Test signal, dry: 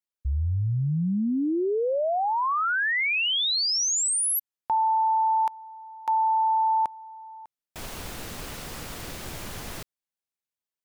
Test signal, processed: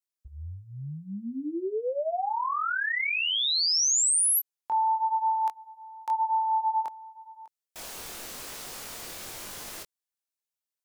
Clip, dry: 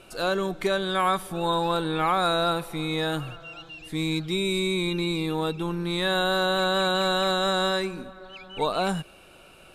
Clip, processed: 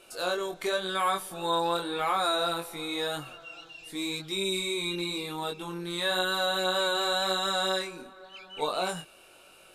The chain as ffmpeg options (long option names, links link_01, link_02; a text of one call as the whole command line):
ffmpeg -i in.wav -af "flanger=delay=20:depth=3.9:speed=0.93,bass=frequency=250:gain=-11,treble=frequency=4000:gain=6,volume=-1dB" out.wav